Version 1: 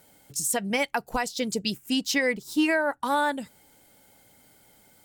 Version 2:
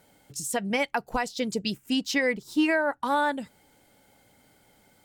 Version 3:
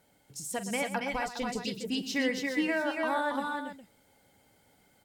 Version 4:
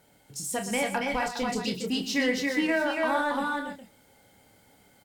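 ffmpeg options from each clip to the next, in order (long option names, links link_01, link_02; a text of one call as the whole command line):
ffmpeg -i in.wav -af "highshelf=frequency=6400:gain=-9" out.wav
ffmpeg -i in.wav -af "aecho=1:1:44|119|277|288|410:0.211|0.237|0.562|0.447|0.282,volume=-6.5dB" out.wav
ffmpeg -i in.wav -filter_complex "[0:a]asplit=2[link_01][link_02];[link_02]volume=36dB,asoftclip=hard,volume=-36dB,volume=-9dB[link_03];[link_01][link_03]amix=inputs=2:normalize=0,asplit=2[link_04][link_05];[link_05]adelay=28,volume=-7dB[link_06];[link_04][link_06]amix=inputs=2:normalize=0,volume=2dB" out.wav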